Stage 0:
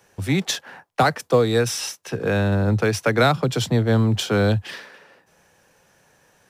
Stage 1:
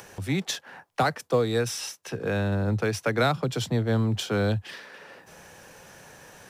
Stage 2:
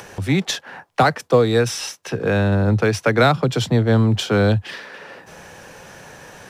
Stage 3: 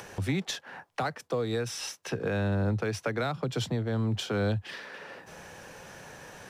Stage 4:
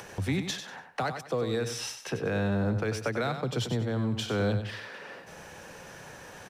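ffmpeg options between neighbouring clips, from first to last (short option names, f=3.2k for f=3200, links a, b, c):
-af "acompressor=mode=upward:threshold=-28dB:ratio=2.5,volume=-6dB"
-af "highshelf=f=7.7k:g=-8,volume=8.5dB"
-af "alimiter=limit=-14.5dB:level=0:latency=1:release=369,volume=-6dB"
-af "aecho=1:1:95|190|285:0.376|0.109|0.0316"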